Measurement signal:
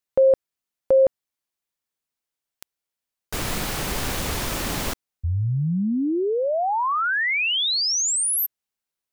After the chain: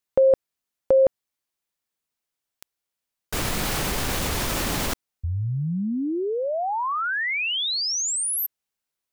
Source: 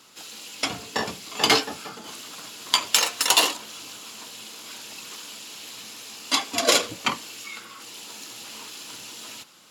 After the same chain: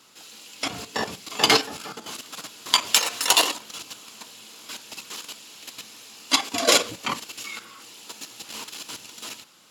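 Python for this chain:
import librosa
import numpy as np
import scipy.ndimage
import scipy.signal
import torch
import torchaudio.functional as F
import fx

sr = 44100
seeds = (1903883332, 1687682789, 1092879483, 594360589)

y = fx.level_steps(x, sr, step_db=10)
y = F.gain(torch.from_numpy(y), 4.5).numpy()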